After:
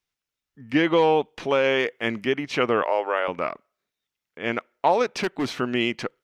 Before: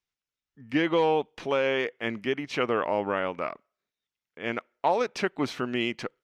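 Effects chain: 1.64–2.25 high shelf 5400 Hz +5.5 dB; 2.82–3.28 HPF 420 Hz 24 dB/oct; 5.12–5.54 overloaded stage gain 24 dB; gain +4.5 dB

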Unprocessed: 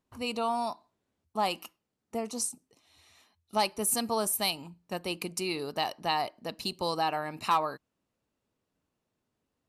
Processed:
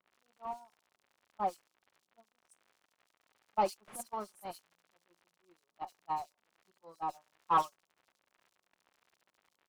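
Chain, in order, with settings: zero-crossing step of -29 dBFS; gate -22 dBFS, range -58 dB; band shelf 2600 Hz -15 dB; comb 5.5 ms, depth 60%; in parallel at -10 dB: Schmitt trigger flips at -42.5 dBFS; on the sum: crackle 100/s -53 dBFS; overdrive pedal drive 16 dB, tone 1900 Hz, clips at -15 dBFS; bands offset in time lows, highs 70 ms, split 3700 Hz; gain -2.5 dB

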